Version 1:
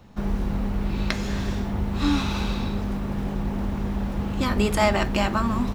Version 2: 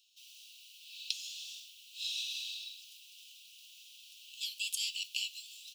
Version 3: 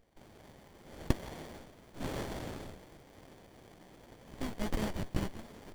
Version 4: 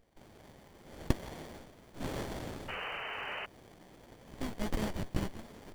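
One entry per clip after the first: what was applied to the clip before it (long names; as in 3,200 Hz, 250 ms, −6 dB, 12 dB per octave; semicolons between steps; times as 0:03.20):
Butterworth high-pass 2,700 Hz 96 dB per octave; level −2 dB
windowed peak hold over 33 samples; level +5 dB
sound drawn into the spectrogram noise, 0:02.68–0:03.46, 380–3,100 Hz −40 dBFS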